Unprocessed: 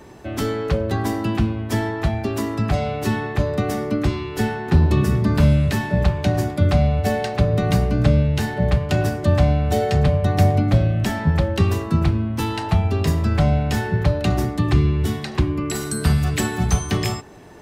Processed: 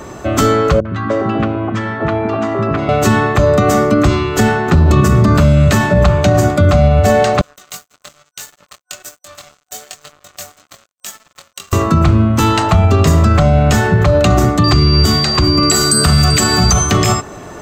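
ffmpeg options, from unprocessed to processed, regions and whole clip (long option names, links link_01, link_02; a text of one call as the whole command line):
ffmpeg -i in.wav -filter_complex "[0:a]asettb=1/sr,asplit=3[link_01][link_02][link_03];[link_01]atrim=end=0.804[link_04];[link_02]atrim=start=0.8:end=2.89,asetpts=PTS-STARTPTS,afade=type=in:duration=0.004:curve=qsin,afade=type=out:start_time=2.086:duration=0.004:curve=qsin,acompressor=threshold=-23dB:ratio=2:attack=3.2:release=140:knee=1:detection=peak,highpass=140,lowpass=2400,acrossover=split=270|980[link_05][link_06][link_07];[link_07]adelay=50[link_08];[link_06]adelay=300[link_09];[link_05][link_09][link_08]amix=inputs=3:normalize=0,atrim=end_sample=92169[link_10];[link_03]atrim=start=2.886[link_11];[link_04][link_10]acrossfade=duration=0.004:curve1=hsin:curve2=qsin[link_12];[link_12][link_11]acrossfade=duration=0.004:curve1=qsin:curve2=hsin,asettb=1/sr,asplit=3[link_13][link_14][link_15];[link_13]atrim=end=7.414[link_16];[link_14]atrim=start=7.41:end=11.73,asetpts=PTS-STARTPTS,afade=type=in:duration=0.004:curve=qsin,afade=type=out:start_time=4.316:duration=0.004:curve=qsin,aderivative,flanger=delay=20:depth=3.3:speed=1.1,aeval=exprs='sgn(val(0))*max(abs(val(0))-0.00668,0)':channel_layout=same[link_17];[link_15]atrim=start=11.726[link_18];[link_16][link_17]acrossfade=duration=0.004:curve1=hsin:curve2=qsin[link_19];[link_19][link_18]acrossfade=duration=0.004:curve1=qsin:curve2=hsin,asettb=1/sr,asplit=3[link_20][link_21][link_22];[link_20]atrim=end=14.644[link_23];[link_21]atrim=start=14.64:end=16.72,asetpts=PTS-STARTPTS,afade=type=in:duration=0.004:curve=qsin,afade=type=out:start_time=2.076:duration=0.004:curve=qsin,bass=frequency=250:gain=-1,treble=frequency=4000:gain=3,aeval=exprs='val(0)+0.0562*sin(2*PI*4700*n/s)':channel_layout=same,aecho=1:1:388:0.112,atrim=end_sample=91728[link_24];[link_22]atrim=start=16.716[link_25];[link_23][link_24]acrossfade=duration=0.004:curve1=hsin:curve2=qsin[link_26];[link_26][link_25]acrossfade=duration=0.004:curve1=qsin:curve2=hsin,superequalizer=8b=1.58:10b=2.24:15b=2:16b=0.562,alimiter=level_in=12.5dB:limit=-1dB:release=50:level=0:latency=1,volume=-1dB" out.wav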